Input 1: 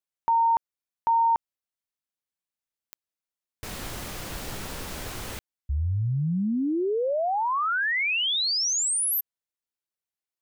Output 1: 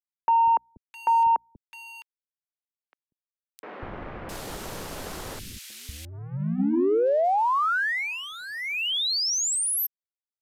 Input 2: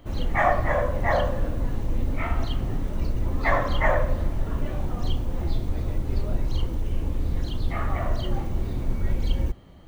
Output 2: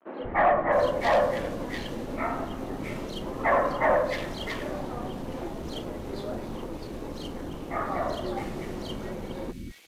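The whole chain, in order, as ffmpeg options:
-filter_complex "[0:a]acrossover=split=140|2000[s0][s1][s2];[s0]acompressor=threshold=0.0316:ratio=6:release=452:knee=2.83:detection=peak[s3];[s3][s1][s2]amix=inputs=3:normalize=0,bandreject=f=60:t=h:w=6,bandreject=f=120:t=h:w=6,bandreject=f=180:t=h:w=6,bandreject=f=240:t=h:w=6,bandreject=f=300:t=h:w=6,acrossover=split=190[s4][s5];[s4]acompressor=threshold=0.00562:ratio=12:release=708:detection=peak[s6];[s6][s5]amix=inputs=2:normalize=0,highshelf=f=2600:g=-4,aeval=exprs='sgn(val(0))*max(abs(val(0))-0.00376,0)':c=same,lowshelf=f=430:g=4.5,aresample=32000,aresample=44100,asoftclip=type=tanh:threshold=0.106,acrossover=split=260|2300[s7][s8][s9];[s7]adelay=190[s10];[s9]adelay=660[s11];[s10][s8][s11]amix=inputs=3:normalize=0,volume=1.68"

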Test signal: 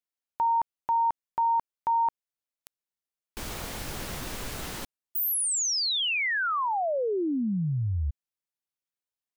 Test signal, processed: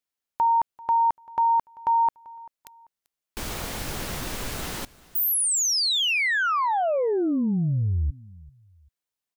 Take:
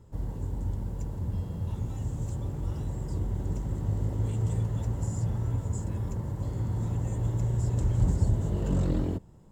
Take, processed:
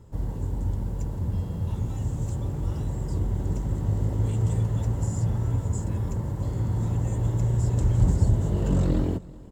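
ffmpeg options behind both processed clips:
-af "aecho=1:1:390|780:0.0794|0.0254,volume=1.58"

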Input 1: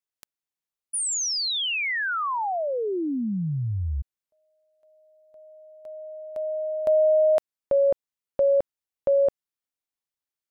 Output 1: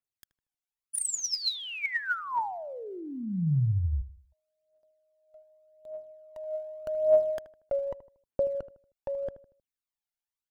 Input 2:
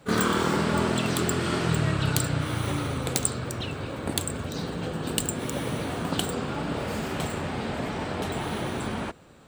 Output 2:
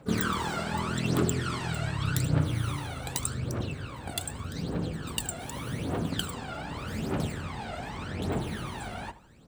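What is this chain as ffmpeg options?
-filter_complex "[0:a]aphaser=in_gain=1:out_gain=1:delay=1.5:decay=0.71:speed=0.84:type=triangular,asplit=2[s0][s1];[s1]adelay=78,lowpass=f=1400:p=1,volume=0.211,asplit=2[s2][s3];[s3]adelay=78,lowpass=f=1400:p=1,volume=0.4,asplit=2[s4][s5];[s5]adelay=78,lowpass=f=1400:p=1,volume=0.4,asplit=2[s6][s7];[s7]adelay=78,lowpass=f=1400:p=1,volume=0.4[s8];[s2][s4][s6][s8]amix=inputs=4:normalize=0[s9];[s0][s9]amix=inputs=2:normalize=0,volume=0.398"

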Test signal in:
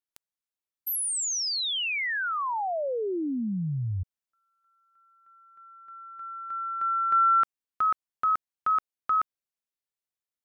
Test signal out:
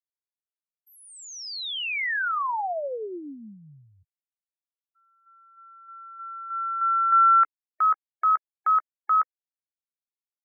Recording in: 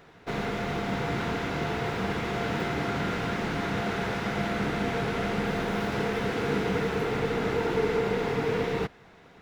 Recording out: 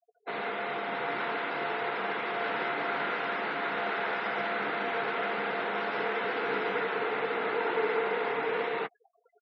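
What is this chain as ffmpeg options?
-filter_complex "[0:a]highpass=480,afftfilt=real='re*gte(hypot(re,im),0.00794)':imag='im*gte(hypot(re,im),0.00794)':win_size=1024:overlap=0.75,lowpass=3500,adynamicequalizer=threshold=0.02:dfrequency=1400:dqfactor=0.81:tfrequency=1400:tqfactor=0.81:attack=5:release=100:ratio=0.375:range=1.5:mode=boostabove:tftype=bell,asplit=2[s0][s1];[s1]adelay=14,volume=0.2[s2];[s0][s2]amix=inputs=2:normalize=0"

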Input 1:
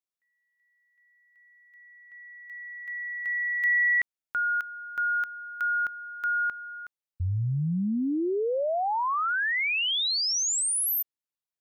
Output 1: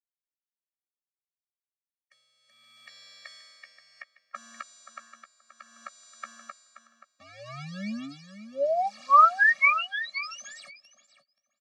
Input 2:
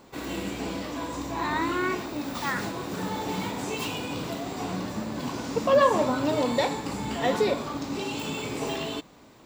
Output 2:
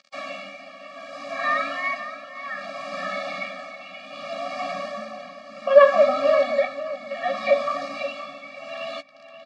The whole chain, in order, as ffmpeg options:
-filter_complex "[0:a]acrossover=split=2800[s0][s1];[s1]acompressor=threshold=0.0158:ratio=4:attack=1:release=60[s2];[s0][s2]amix=inputs=2:normalize=0,acrossover=split=460 3400:gain=0.2 1 0.158[s3][s4][s5];[s3][s4][s5]amix=inputs=3:normalize=0,acrusher=bits=7:mix=0:aa=0.000001,tremolo=f=0.65:d=0.81,highpass=f=200:w=0.5412,highpass=f=200:w=1.3066,equalizer=f=380:t=q:w=4:g=-7,equalizer=f=560:t=q:w=4:g=9,equalizer=f=800:t=q:w=4:g=-3,equalizer=f=1200:t=q:w=4:g=5,equalizer=f=2200:t=q:w=4:g=8,equalizer=f=4600:t=q:w=4:g=7,lowpass=f=6700:w=0.5412,lowpass=f=6700:w=1.3066,asplit=2[s6][s7];[s7]adelay=14,volume=0.282[s8];[s6][s8]amix=inputs=2:normalize=0,asplit=2[s9][s10];[s10]adelay=528,lowpass=f=3900:p=1,volume=0.266,asplit=2[s11][s12];[s12]adelay=528,lowpass=f=3900:p=1,volume=0.18[s13];[s9][s11][s13]amix=inputs=3:normalize=0,afftfilt=real='re*eq(mod(floor(b*sr/1024/270),2),0)':imag='im*eq(mod(floor(b*sr/1024/270),2),0)':win_size=1024:overlap=0.75,volume=2.51"

